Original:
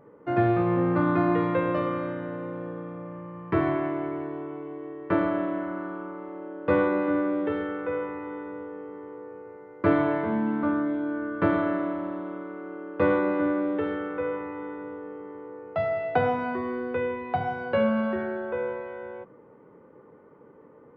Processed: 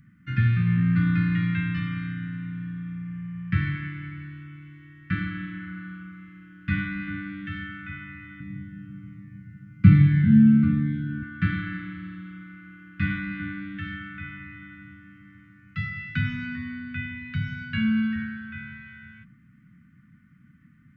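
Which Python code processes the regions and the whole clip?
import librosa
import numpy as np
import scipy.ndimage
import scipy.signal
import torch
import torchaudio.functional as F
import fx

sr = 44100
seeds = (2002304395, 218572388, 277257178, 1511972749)

y = fx.chain(x, sr, fx.peak_eq(hz=150.0, db=14.5, octaves=1.5),
    fx.notch_cascade(direction='falling', hz=1.3), at=(8.4, 11.23))
y = scipy.signal.sosfilt(scipy.signal.cheby2(4, 50, [380.0, 920.0], 'bandstop', fs=sr, output='sos'), y)
y = fx.low_shelf(y, sr, hz=180.0, db=4.5)
y = y * 10.0 ** (5.5 / 20.0)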